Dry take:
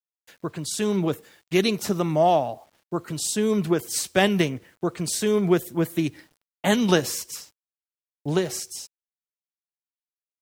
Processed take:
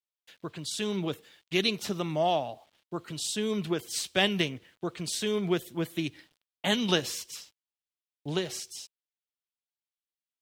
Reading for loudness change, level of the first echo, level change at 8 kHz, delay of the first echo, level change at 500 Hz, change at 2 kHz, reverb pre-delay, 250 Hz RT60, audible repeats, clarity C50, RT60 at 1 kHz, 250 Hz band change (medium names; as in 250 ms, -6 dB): -6.5 dB, no echo, -7.0 dB, no echo, -8.0 dB, -4.0 dB, no reverb, no reverb, no echo, no reverb, no reverb, -8.0 dB